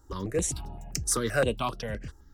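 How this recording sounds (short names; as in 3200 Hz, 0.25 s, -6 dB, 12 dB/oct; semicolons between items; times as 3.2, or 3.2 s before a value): notches that jump at a steady rate 7.7 Hz 660–7100 Hz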